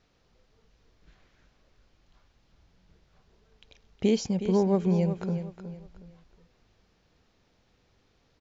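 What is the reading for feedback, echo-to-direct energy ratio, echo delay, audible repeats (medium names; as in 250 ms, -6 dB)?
30%, -10.0 dB, 366 ms, 3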